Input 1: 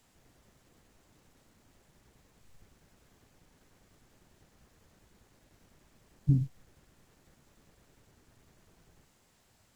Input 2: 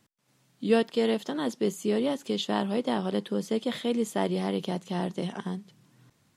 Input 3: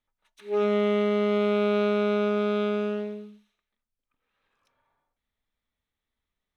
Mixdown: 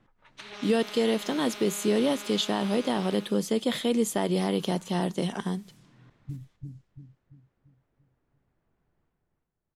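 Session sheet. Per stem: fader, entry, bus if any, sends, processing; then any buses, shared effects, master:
-13.0 dB, 0.00 s, no send, echo send -3 dB, gate with hold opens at -54 dBFS; shaped vibrato saw down 6.5 Hz, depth 100 cents
+3.0 dB, 0.00 s, no send, no echo send, dry
-4.5 dB, 0.00 s, no send, no echo send, compressor 10:1, threshold -27 dBFS, peak gain reduction 7.5 dB; flange 1.9 Hz, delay 2.4 ms, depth 9.1 ms, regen +39%; spectral compressor 4:1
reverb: off
echo: feedback echo 0.341 s, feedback 45%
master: low-pass opened by the level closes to 1700 Hz, open at -34.5 dBFS; high shelf 6600 Hz +8 dB; limiter -15 dBFS, peak gain reduction 7 dB

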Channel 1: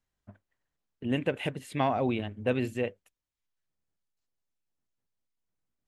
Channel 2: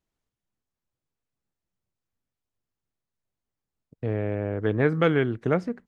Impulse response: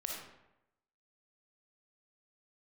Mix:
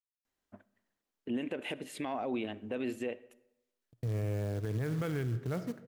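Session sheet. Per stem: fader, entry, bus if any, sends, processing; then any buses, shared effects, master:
0.0 dB, 0.25 s, send -18.5 dB, resonant low shelf 190 Hz -9.5 dB, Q 1.5; compressor 1.5:1, threshold -36 dBFS, peak gain reduction 5.5 dB
-10.5 dB, 0.00 s, send -12.5 dB, short-mantissa float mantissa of 2-bit; expander -47 dBFS; bell 120 Hz +13 dB 0.54 oct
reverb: on, RT60 0.90 s, pre-delay 15 ms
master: limiter -26.5 dBFS, peak gain reduction 10 dB

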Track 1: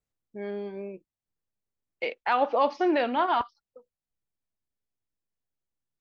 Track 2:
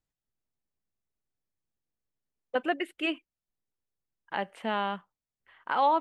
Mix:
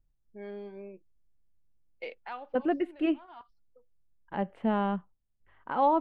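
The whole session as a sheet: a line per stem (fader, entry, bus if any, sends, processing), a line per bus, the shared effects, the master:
-7.0 dB, 0.00 s, no send, auto duck -21 dB, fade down 0.30 s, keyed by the second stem
-1.5 dB, 0.00 s, no send, tilt -4.5 dB/oct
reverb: off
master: harmonic-percussive split percussive -4 dB

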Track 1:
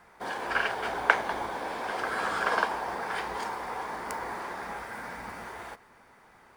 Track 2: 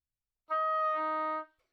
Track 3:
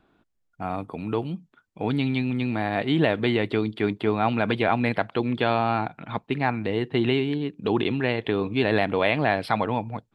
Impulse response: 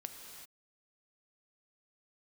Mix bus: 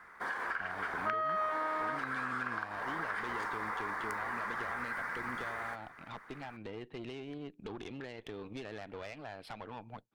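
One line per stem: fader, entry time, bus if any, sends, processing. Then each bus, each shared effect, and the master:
-6.0 dB, 0.00 s, no send, band shelf 1500 Hz +11.5 dB 1.2 oct; compressor 10:1, threshold -25 dBFS, peak gain reduction 21.5 dB
+2.5 dB, 0.55 s, no send, dry
-6.0 dB, 0.00 s, no send, low shelf 160 Hz -11.5 dB; compressor 10:1, threshold -29 dBFS, peak gain reduction 12.5 dB; tube stage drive 30 dB, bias 0.65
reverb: off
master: compressor 2:1, threshold -35 dBFS, peak gain reduction 7 dB

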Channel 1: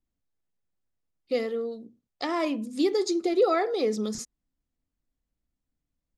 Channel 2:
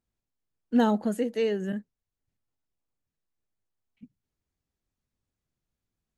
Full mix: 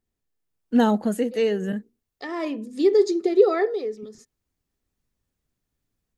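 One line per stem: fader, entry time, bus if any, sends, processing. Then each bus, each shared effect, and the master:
-1.5 dB, 0.00 s, no send, high shelf 6900 Hz -7.5 dB; small resonant body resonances 410/1800 Hz, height 12 dB; auto duck -15 dB, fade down 0.40 s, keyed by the second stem
-1.0 dB, 0.00 s, no send, AGC gain up to 5 dB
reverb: off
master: high shelf 8900 Hz +4 dB

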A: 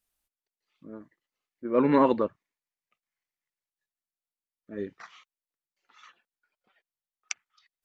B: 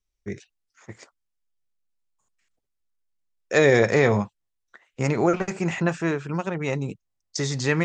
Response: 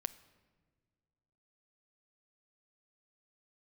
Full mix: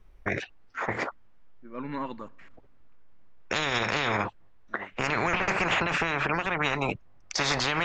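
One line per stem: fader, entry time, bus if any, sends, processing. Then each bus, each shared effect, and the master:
-10.0 dB, 0.00 s, send -6 dB, bell 440 Hz -12 dB 1.5 oct
+1.5 dB, 0.00 s, no send, LPF 1500 Hz 12 dB/oct; spectral compressor 10:1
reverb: on, pre-delay 7 ms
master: limiter -15.5 dBFS, peak gain reduction 9 dB

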